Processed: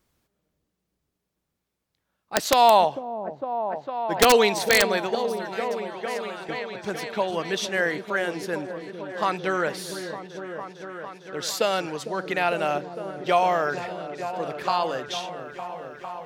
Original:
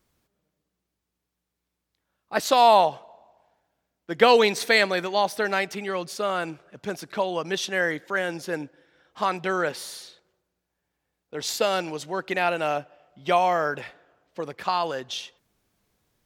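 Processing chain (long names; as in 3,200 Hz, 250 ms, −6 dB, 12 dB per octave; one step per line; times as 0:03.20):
0:05.15–0:06.49: guitar amp tone stack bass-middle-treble 5-5-5
echo whose low-pass opens from repeat to repeat 454 ms, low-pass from 400 Hz, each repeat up 1 octave, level −6 dB
wrap-around overflow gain 6.5 dB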